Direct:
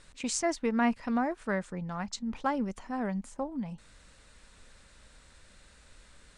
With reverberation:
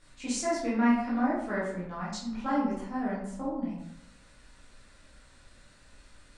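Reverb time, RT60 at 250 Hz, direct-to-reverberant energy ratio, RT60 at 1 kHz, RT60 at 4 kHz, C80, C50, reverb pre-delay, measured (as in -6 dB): 0.75 s, 0.85 s, -9.0 dB, 0.75 s, 0.45 s, 5.5 dB, 1.0 dB, 12 ms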